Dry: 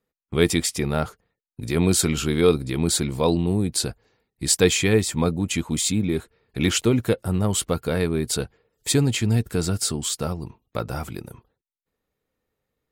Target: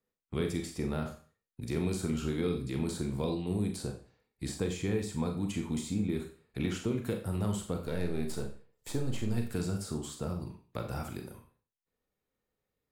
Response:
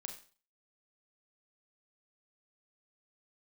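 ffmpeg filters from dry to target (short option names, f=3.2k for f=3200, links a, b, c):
-filter_complex "[0:a]asettb=1/sr,asplit=3[a][b][c];[a]atrim=end=7.794[d];[b]atrim=start=7.79:end=9.38,asetpts=PTS-STARTPTS,afade=t=in:d=0.004:c=qsin,afade=t=out:st=1.586:d=0.004:c=qsin,aeval=exprs='if(lt(val(0),0),0.447*val(0),val(0))':c=same[e];[c]atrim=start=9.376[f];[d][e]acrossfade=d=0.004:c1=hsin:c2=qsin[g];[g][f]acrossfade=d=0.004:c1=qsin:c2=hsin,acrossover=split=360|1400[h][i][j];[h]acompressor=threshold=-23dB:ratio=4[k];[i]acompressor=threshold=-32dB:ratio=4[l];[j]acompressor=threshold=-39dB:ratio=4[m];[k][l][m]amix=inputs=3:normalize=0[n];[1:a]atrim=start_sample=2205,afade=t=out:st=0.36:d=0.01,atrim=end_sample=16317[o];[n][o]afir=irnorm=-1:irlink=0,volume=-3dB"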